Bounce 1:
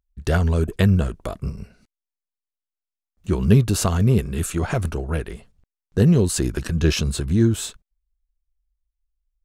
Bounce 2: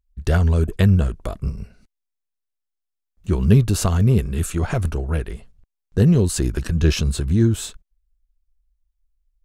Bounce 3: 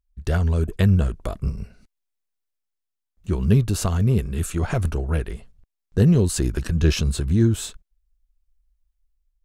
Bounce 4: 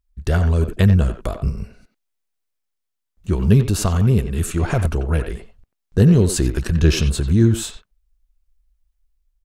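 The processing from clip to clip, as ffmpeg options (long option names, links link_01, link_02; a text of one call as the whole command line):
ffmpeg -i in.wav -af "lowshelf=frequency=71:gain=10,volume=-1dB" out.wav
ffmpeg -i in.wav -af "dynaudnorm=framelen=370:gausssize=5:maxgain=7dB,volume=-4dB" out.wav
ffmpeg -i in.wav -filter_complex "[0:a]asplit=2[link_01][link_02];[link_02]adelay=90,highpass=300,lowpass=3400,asoftclip=type=hard:threshold=-15dB,volume=-8dB[link_03];[link_01][link_03]amix=inputs=2:normalize=0,volume=3.5dB" out.wav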